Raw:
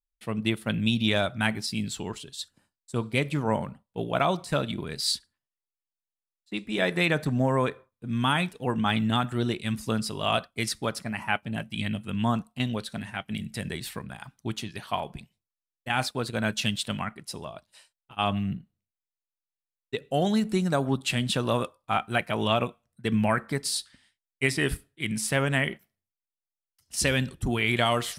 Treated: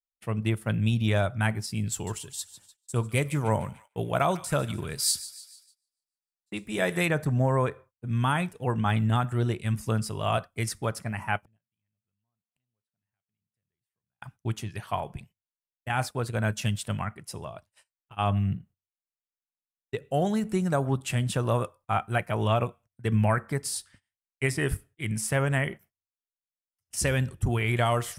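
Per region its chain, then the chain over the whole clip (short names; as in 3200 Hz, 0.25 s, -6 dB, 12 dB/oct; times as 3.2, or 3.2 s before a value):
1.92–7.09 high shelf 4600 Hz +10.5 dB + thin delay 0.148 s, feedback 48%, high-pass 1500 Hz, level -14.5 dB
11.39–14.22 compressor 3:1, threshold -38 dBFS + flipped gate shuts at -42 dBFS, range -30 dB + core saturation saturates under 440 Hz
whole clip: dynamic EQ 2800 Hz, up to -4 dB, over -39 dBFS, Q 1.1; gate -52 dBFS, range -19 dB; fifteen-band EQ 100 Hz +8 dB, 250 Hz -5 dB, 4000 Hz -9 dB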